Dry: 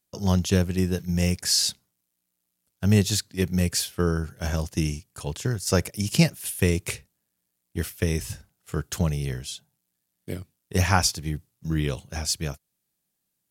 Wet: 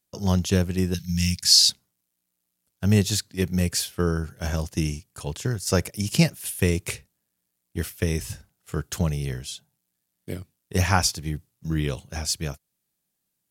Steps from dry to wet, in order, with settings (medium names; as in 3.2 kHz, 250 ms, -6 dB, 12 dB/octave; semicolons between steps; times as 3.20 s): 0.94–1.70 s: FFT filter 170 Hz 0 dB, 530 Hz -28 dB, 1.3 kHz -8 dB, 4.3 kHz +9 dB, 8.1 kHz +2 dB